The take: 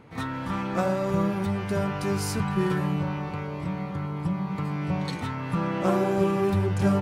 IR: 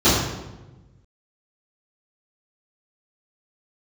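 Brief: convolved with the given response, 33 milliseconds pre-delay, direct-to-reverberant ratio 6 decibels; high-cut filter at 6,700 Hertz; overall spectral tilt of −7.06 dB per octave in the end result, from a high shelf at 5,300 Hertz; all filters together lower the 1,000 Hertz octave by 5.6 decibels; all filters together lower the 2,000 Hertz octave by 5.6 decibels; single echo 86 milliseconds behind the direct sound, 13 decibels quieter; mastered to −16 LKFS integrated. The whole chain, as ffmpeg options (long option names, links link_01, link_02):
-filter_complex "[0:a]lowpass=6700,equalizer=frequency=1000:width_type=o:gain=-6,equalizer=frequency=2000:width_type=o:gain=-6.5,highshelf=frequency=5300:gain=9,aecho=1:1:86:0.224,asplit=2[link_01][link_02];[1:a]atrim=start_sample=2205,adelay=33[link_03];[link_02][link_03]afir=irnorm=-1:irlink=0,volume=-29dB[link_04];[link_01][link_04]amix=inputs=2:normalize=0,volume=9dB"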